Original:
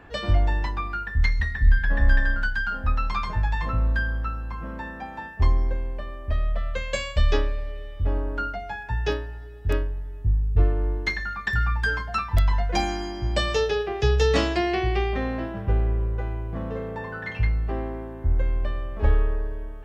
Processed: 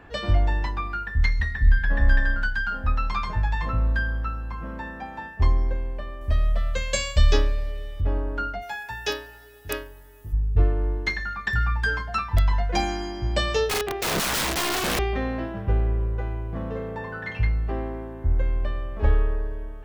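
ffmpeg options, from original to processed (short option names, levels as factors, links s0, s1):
-filter_complex "[0:a]asettb=1/sr,asplit=3[s0][s1][s2];[s0]atrim=end=6.214[s3];[s1]atrim=start=6.21:end=8.01,asetpts=PTS-STARTPTS,afade=t=in:d=0.004:c=qsin,afade=t=out:st=1.796:d=0.004:c=qsin,bass=f=250:g=3,treble=f=4000:g=11[s4];[s2]atrim=start=8.006[s5];[s3][s4]acrossfade=d=0.004:c1=hsin:c2=qsin[s6];[s6][s5]acrossfade=d=0.004:c1=qsin:c2=hsin,asplit=3[s7][s8][s9];[s7]afade=t=out:st=8.61:d=0.02[s10];[s8]aemphasis=mode=production:type=riaa,afade=t=in:st=8.61:d=0.02,afade=t=out:st=10.32:d=0.02[s11];[s9]afade=t=in:st=10.32:d=0.02[s12];[s10][s11][s12]amix=inputs=3:normalize=0,asettb=1/sr,asplit=3[s13][s14][s15];[s13]atrim=end=13.674[s16];[s14]atrim=start=13.67:end=14.99,asetpts=PTS-STARTPTS,afade=t=in:d=0.004:c=qsin,afade=t=out:st=1.316:d=0.004:c=qsin,aeval=exprs='(mod(10*val(0)+1,2)-1)/10':c=same[s17];[s15]atrim=start=14.986[s18];[s16][s17]acrossfade=d=0.004:c1=hsin:c2=qsin[s19];[s19][s18]acrossfade=d=0.004:c1=qsin:c2=hsin"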